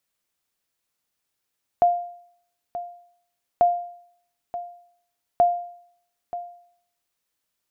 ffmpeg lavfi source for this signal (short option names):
-f lavfi -i "aevalsrc='0.299*(sin(2*PI*701*mod(t,1.79))*exp(-6.91*mod(t,1.79)/0.63)+0.2*sin(2*PI*701*max(mod(t,1.79)-0.93,0))*exp(-6.91*max(mod(t,1.79)-0.93,0)/0.63))':d=5.37:s=44100"